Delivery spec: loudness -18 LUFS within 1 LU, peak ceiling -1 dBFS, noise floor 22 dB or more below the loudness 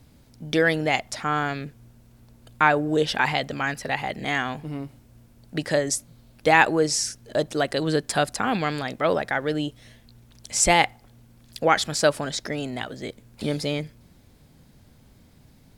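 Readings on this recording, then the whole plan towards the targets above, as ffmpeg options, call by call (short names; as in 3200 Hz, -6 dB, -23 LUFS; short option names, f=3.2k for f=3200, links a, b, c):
loudness -24.0 LUFS; peak -2.0 dBFS; loudness target -18.0 LUFS
-> -af "volume=6dB,alimiter=limit=-1dB:level=0:latency=1"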